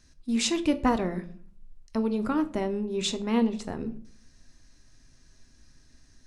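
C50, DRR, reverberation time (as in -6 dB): 16.0 dB, 9.0 dB, 0.50 s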